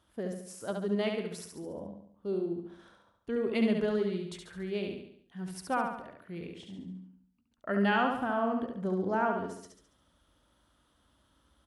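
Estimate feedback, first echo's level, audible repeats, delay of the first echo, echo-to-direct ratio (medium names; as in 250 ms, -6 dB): 49%, -4.5 dB, 5, 70 ms, -3.5 dB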